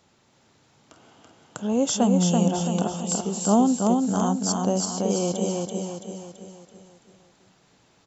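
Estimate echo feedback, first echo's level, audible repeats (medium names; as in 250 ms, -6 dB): 48%, -3.0 dB, 6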